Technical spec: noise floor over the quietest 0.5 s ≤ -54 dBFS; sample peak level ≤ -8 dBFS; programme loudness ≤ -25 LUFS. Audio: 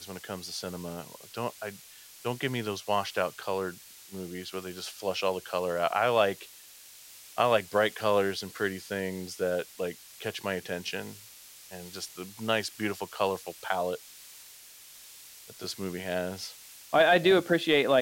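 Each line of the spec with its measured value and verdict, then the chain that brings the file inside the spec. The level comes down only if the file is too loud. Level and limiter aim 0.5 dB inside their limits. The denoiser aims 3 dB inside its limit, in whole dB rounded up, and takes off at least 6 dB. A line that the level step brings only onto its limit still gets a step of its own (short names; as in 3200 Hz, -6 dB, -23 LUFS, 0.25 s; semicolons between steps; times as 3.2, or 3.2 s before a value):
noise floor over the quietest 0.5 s -51 dBFS: fail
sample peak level -12.5 dBFS: OK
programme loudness -30.0 LUFS: OK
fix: denoiser 6 dB, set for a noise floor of -51 dBFS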